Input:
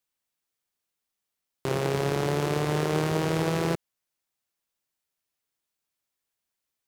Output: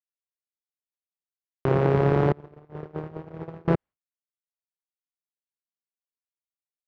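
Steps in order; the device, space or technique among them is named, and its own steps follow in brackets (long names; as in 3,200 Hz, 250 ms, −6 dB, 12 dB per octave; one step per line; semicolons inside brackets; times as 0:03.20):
low-shelf EQ 160 Hz +5 dB
0:02.32–0:03.68: noise gate −20 dBFS, range −30 dB
hearing-loss simulation (low-pass filter 1,600 Hz 12 dB per octave; downward expander −42 dBFS)
level +5 dB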